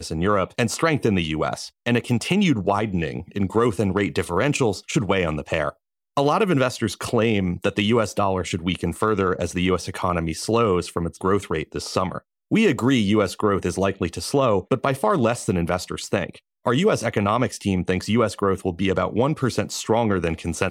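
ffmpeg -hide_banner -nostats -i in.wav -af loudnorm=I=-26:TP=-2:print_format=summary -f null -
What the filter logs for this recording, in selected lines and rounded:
Input Integrated:    -22.4 LUFS
Input True Peak:      -5.1 dBTP
Input LRA:             0.9 LU
Input Threshold:     -32.5 LUFS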